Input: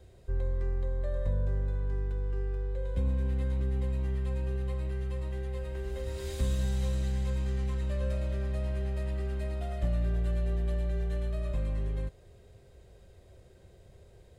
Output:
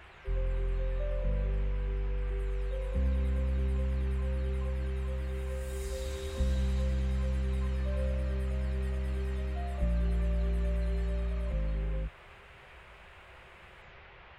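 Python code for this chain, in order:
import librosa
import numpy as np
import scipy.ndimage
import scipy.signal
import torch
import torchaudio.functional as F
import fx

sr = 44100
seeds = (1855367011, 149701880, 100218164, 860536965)

y = fx.spec_delay(x, sr, highs='early', ms=566)
y = fx.notch(y, sr, hz=1500.0, q=12.0)
y = fx.dmg_noise_band(y, sr, seeds[0], low_hz=520.0, high_hz=2700.0, level_db=-55.0)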